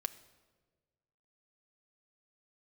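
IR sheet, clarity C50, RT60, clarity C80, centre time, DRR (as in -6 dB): 16.0 dB, 1.4 s, 17.5 dB, 5 ms, 8.0 dB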